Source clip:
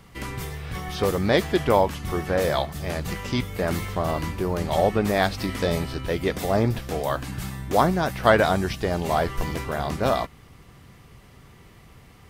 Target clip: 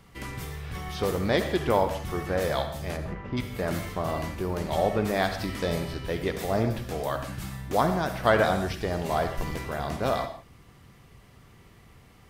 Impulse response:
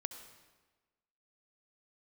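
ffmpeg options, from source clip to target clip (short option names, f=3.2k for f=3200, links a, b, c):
-filter_complex "[0:a]asplit=3[a][b][c];[a]afade=t=out:st=2.96:d=0.02[d];[b]lowpass=1.4k,afade=t=in:st=2.96:d=0.02,afade=t=out:st=3.36:d=0.02[e];[c]afade=t=in:st=3.36:d=0.02[f];[d][e][f]amix=inputs=3:normalize=0[g];[1:a]atrim=start_sample=2205,afade=t=out:st=0.29:d=0.01,atrim=end_sample=13230,asetrate=57330,aresample=44100[h];[g][h]afir=irnorm=-1:irlink=0"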